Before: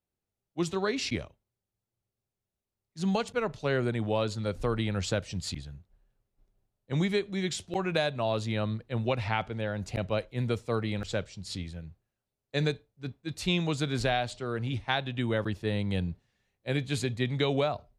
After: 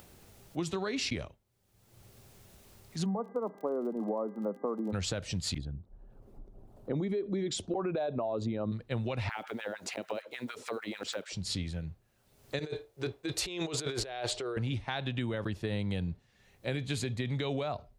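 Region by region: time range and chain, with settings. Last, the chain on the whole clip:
0:03.04–0:04.92: Chebyshev band-pass filter 190–1,200 Hz, order 5 + hum with harmonics 400 Hz, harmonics 5, −63 dBFS + surface crackle 33 per second −47 dBFS
0:05.58–0:08.72: spectral envelope exaggerated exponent 1.5 + flat-topped bell 540 Hz +10 dB 2.9 octaves
0:09.29–0:11.33: one scale factor per block 7 bits + downward compressor 10 to 1, threshold −37 dBFS + auto-filter high-pass sine 6.7 Hz 240–1,700 Hz
0:12.59–0:14.57: low shelf with overshoot 290 Hz −8.5 dB, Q 3 + compressor whose output falls as the input rises −38 dBFS
whole clip: upward compression, threshold −38 dBFS; brickwall limiter −21.5 dBFS; downward compressor, threshold −34 dBFS; level +4 dB

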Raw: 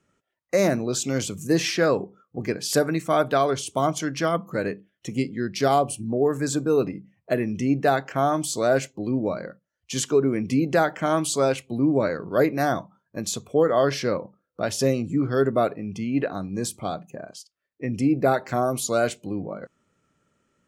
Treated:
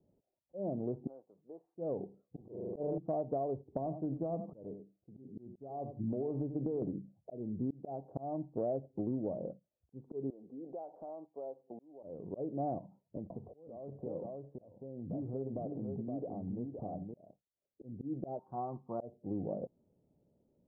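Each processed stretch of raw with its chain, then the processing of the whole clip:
0:01.07–0:01.75: high-pass filter 1,100 Hz + downward compressor 2.5 to 1, threshold −43 dBFS
0:02.41–0:02.98: loudspeaker in its box 140–2,500 Hz, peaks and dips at 240 Hz −7 dB, 1,000 Hz +10 dB, 1,800 Hz −5 dB + flutter between parallel walls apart 7 metres, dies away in 0.84 s + level that may fall only so fast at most 33 dB per second
0:03.63–0:06.82: parametric band 5,900 Hz +13 dB 1.3 octaves + downward compressor 16 to 1, threshold −24 dBFS + single-tap delay 91 ms −12.5 dB
0:10.30–0:12.03: high-pass filter 540 Hz + downward compressor 4 to 1, threshold −40 dBFS
0:12.78–0:17.31: downward compressor 10 to 1, threshold −34 dBFS + single-tap delay 519 ms −4.5 dB
0:18.39–0:19.00: low shelf with overshoot 770 Hz −10 dB, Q 3 + comb filter 5.5 ms, depth 32% + highs frequency-modulated by the lows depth 0.12 ms
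whole clip: volume swells 568 ms; Butterworth low-pass 810 Hz 48 dB per octave; downward compressor 10 to 1, threshold −30 dBFS; level −2 dB

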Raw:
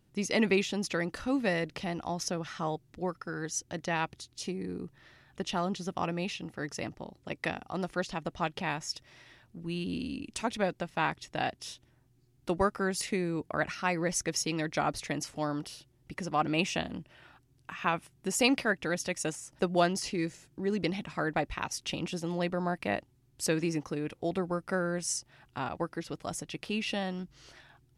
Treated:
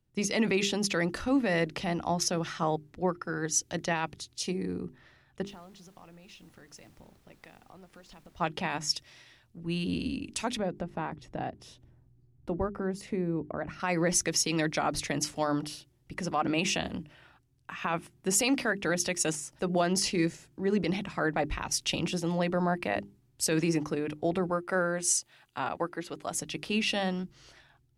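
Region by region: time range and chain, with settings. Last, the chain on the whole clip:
0:05.45–0:08.39: downward compressor 8 to 1, threshold −47 dBFS + background noise pink −64 dBFS
0:10.59–0:13.80: downward compressor 2 to 1, threshold −45 dBFS + tilt shelving filter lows +7.5 dB, about 1,200 Hz
0:24.50–0:26.37: low-shelf EQ 230 Hz −9.5 dB + notch filter 5,400 Hz, Q 7.8
whole clip: mains-hum notches 50/100/150/200/250/300/350/400 Hz; brickwall limiter −23.5 dBFS; multiband upward and downward expander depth 40%; level +5 dB

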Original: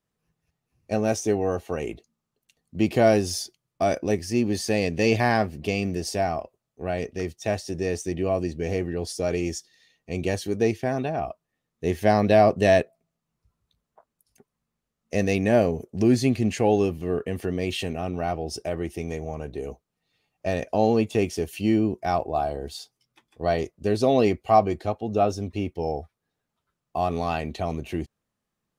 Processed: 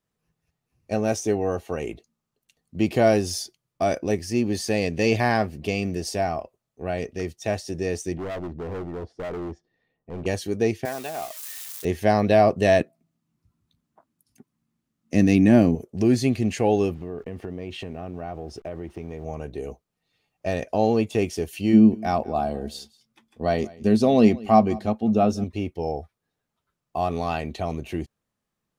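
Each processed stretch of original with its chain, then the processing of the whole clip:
0:08.17–0:10.26: low-pass filter 1,000 Hz + hard clipping −29 dBFS
0:10.85–0:11.85: spike at every zero crossing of −26 dBFS + high-pass filter 780 Hz 6 dB per octave
0:12.80–0:15.75: high-pass filter 90 Hz + low shelf with overshoot 370 Hz +6 dB, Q 3
0:16.94–0:19.25: hold until the input has moved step −48 dBFS + low-pass filter 1,600 Hz 6 dB per octave + downward compressor 4 to 1, threshold −29 dBFS
0:21.73–0:25.44: parametric band 220 Hz +14 dB 0.3 octaves + single-tap delay 187 ms −22 dB
whole clip: no processing

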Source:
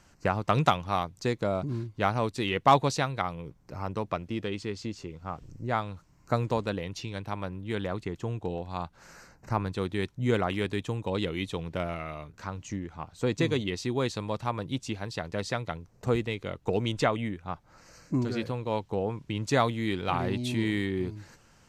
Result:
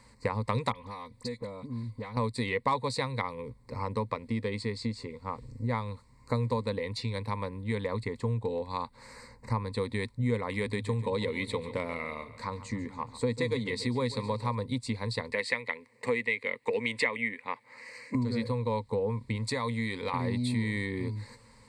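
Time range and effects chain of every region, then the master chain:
0:00.72–0:02.17: comb filter 4 ms, depth 31% + downward compressor 16 to 1, threshold −37 dBFS + all-pass dispersion highs, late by 40 ms, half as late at 2,300 Hz
0:10.58–0:14.55: mains-hum notches 50/100/150 Hz + repeating echo 141 ms, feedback 53%, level −16 dB
0:15.32–0:18.15: high-pass filter 290 Hz + flat-topped bell 2,300 Hz +11.5 dB 1 octave
0:19.35–0:20.14: low-shelf EQ 420 Hz −5.5 dB + downward compressor 4 to 1, threshold −28 dBFS
whole clip: EQ curve with evenly spaced ripples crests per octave 0.96, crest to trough 16 dB; downward compressor 3 to 1, threshold −28 dBFS

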